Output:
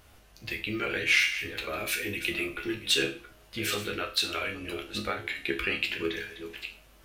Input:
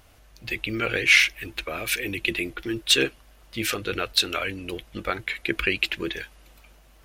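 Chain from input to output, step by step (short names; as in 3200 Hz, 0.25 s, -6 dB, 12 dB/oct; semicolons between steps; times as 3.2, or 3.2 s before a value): reverse delay 0.416 s, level -13 dB; in parallel at +2 dB: compressor, threshold -32 dBFS, peak gain reduction 18.5 dB; on the sum: resonator bank C#2 minor, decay 0.38 s; gain +4.5 dB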